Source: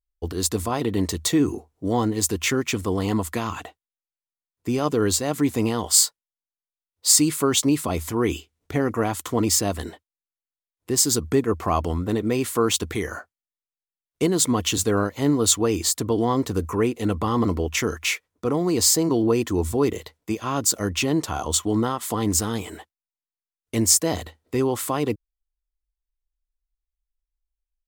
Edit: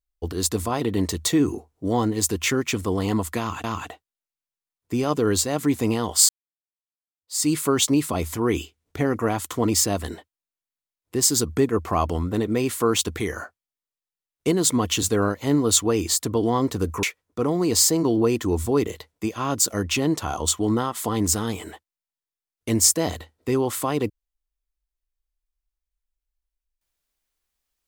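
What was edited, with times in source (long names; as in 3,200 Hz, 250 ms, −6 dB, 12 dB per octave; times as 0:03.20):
0:03.39–0:03.64: repeat, 2 plays
0:06.04–0:07.25: fade in exponential
0:16.78–0:18.09: remove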